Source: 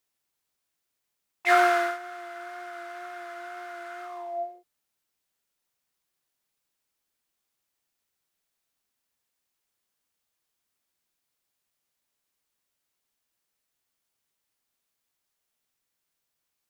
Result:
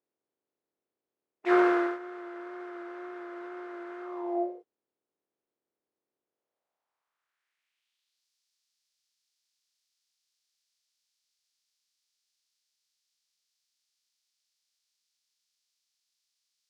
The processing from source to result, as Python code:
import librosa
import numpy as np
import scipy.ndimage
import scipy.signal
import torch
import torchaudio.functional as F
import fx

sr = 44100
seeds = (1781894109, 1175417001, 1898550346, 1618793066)

y = fx.spec_clip(x, sr, under_db=17)
y = 10.0 ** (-9.5 / 20.0) * np.tanh(y / 10.0 ** (-9.5 / 20.0))
y = fx.filter_sweep_bandpass(y, sr, from_hz=380.0, to_hz=4900.0, start_s=6.25, end_s=8.26, q=2.0)
y = y * librosa.db_to_amplitude(8.5)